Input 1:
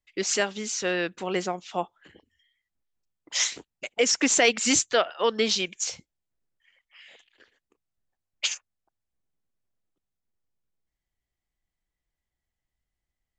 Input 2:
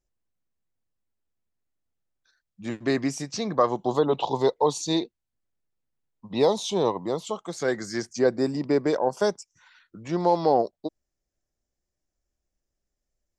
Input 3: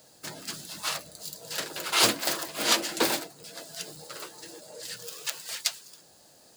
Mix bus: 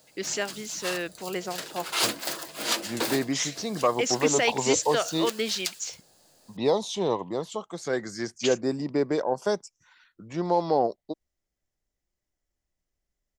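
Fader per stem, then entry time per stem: -4.5 dB, -2.5 dB, -3.5 dB; 0.00 s, 0.25 s, 0.00 s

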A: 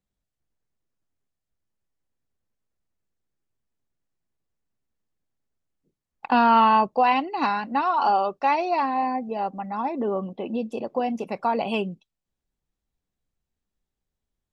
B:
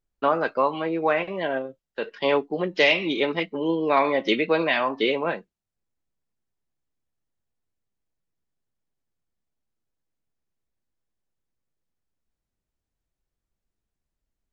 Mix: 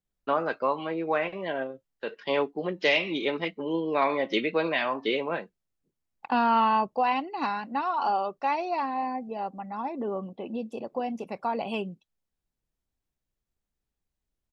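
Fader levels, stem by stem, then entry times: -5.5 dB, -4.5 dB; 0.00 s, 0.05 s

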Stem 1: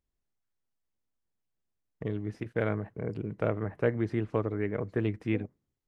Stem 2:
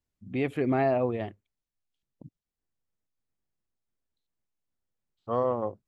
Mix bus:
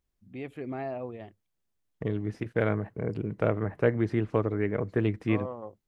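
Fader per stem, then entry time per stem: +3.0 dB, -10.0 dB; 0.00 s, 0.00 s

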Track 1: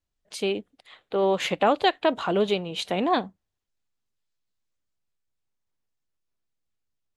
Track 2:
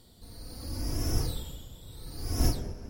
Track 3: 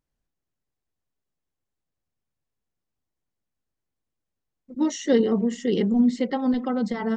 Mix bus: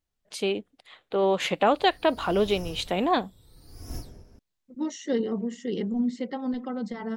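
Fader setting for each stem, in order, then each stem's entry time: -0.5 dB, -11.0 dB, -7.0 dB; 0.00 s, 1.50 s, 0.00 s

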